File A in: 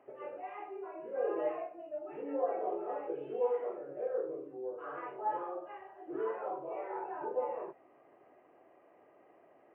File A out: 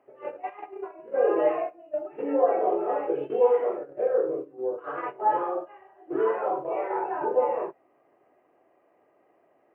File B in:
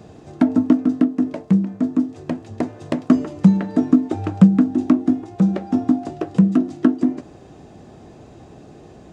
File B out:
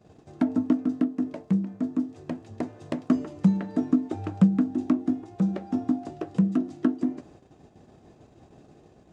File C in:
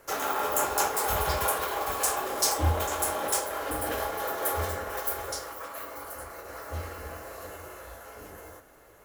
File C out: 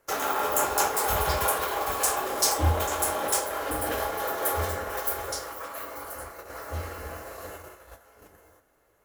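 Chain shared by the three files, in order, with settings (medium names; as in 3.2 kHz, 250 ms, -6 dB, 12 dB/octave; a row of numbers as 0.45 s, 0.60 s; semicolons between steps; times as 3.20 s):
gate -42 dBFS, range -13 dB; normalise loudness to -27 LUFS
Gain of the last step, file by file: +11.5 dB, -8.0 dB, +2.0 dB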